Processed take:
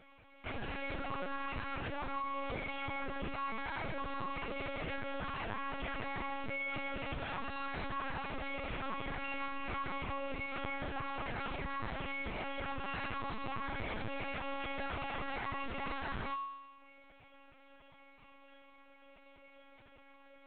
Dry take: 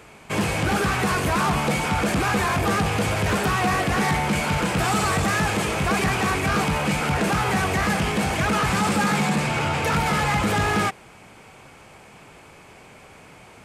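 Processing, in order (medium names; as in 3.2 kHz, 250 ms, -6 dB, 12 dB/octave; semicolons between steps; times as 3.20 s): formant-preserving pitch shift -1.5 st; feedback comb 550 Hz, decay 0.59 s, mix 90%; peak limiter -35.5 dBFS, peak gain reduction 9.5 dB; granular stretch 1.5×, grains 22 ms; LPC vocoder at 8 kHz pitch kept; trim +6.5 dB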